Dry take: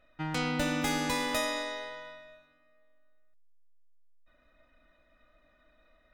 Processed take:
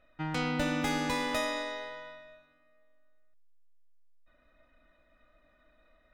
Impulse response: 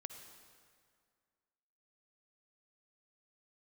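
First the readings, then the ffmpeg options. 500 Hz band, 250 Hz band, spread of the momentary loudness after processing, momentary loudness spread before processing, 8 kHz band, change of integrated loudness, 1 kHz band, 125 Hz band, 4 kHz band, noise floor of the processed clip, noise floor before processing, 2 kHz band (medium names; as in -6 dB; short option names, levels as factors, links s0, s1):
0.0 dB, 0.0 dB, 15 LU, 13 LU, -5.0 dB, -1.0 dB, 0.0 dB, 0.0 dB, -2.0 dB, -67 dBFS, -67 dBFS, -1.0 dB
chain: -af "highshelf=f=5800:g=-8"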